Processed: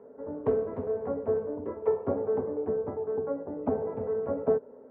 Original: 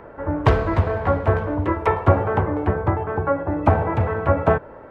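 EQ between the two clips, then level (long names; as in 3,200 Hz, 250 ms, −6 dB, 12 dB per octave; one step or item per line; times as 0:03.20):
pair of resonant band-passes 330 Hz, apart 0.73 octaves
high-frequency loss of the air 250 metres
low-shelf EQ 330 Hz −5 dB
+1.5 dB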